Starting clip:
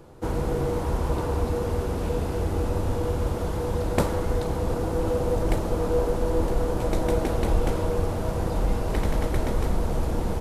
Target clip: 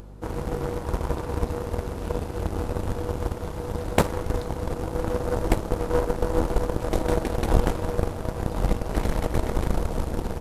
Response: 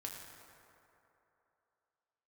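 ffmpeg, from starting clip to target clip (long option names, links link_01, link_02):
-af "aeval=exprs='val(0)+0.01*(sin(2*PI*50*n/s)+sin(2*PI*2*50*n/s)/2+sin(2*PI*3*50*n/s)/3+sin(2*PI*4*50*n/s)/4+sin(2*PI*5*50*n/s)/5)':channel_layout=same,aeval=exprs='0.562*(cos(1*acos(clip(val(0)/0.562,-1,1)))-cos(1*PI/2))+0.0631*(cos(7*acos(clip(val(0)/0.562,-1,1)))-cos(7*PI/2))':channel_layout=same,acompressor=mode=upward:threshold=-40dB:ratio=2.5,volume=5dB"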